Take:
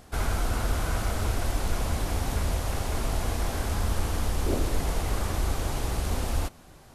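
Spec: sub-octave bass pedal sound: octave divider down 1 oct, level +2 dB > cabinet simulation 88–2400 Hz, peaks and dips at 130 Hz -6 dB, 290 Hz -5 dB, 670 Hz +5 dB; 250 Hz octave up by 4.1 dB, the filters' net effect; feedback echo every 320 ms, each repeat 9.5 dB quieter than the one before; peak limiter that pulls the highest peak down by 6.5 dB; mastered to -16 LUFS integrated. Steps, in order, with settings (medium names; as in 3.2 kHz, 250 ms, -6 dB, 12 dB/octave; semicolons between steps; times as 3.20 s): peaking EQ 250 Hz +8 dB; peak limiter -18 dBFS; feedback delay 320 ms, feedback 33%, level -9.5 dB; octave divider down 1 oct, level +2 dB; cabinet simulation 88–2400 Hz, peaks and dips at 130 Hz -6 dB, 290 Hz -5 dB, 670 Hz +5 dB; trim +14.5 dB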